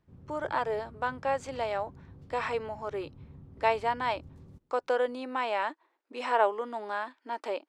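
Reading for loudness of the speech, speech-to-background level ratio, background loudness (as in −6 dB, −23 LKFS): −32.0 LKFS, 20.0 dB, −52.0 LKFS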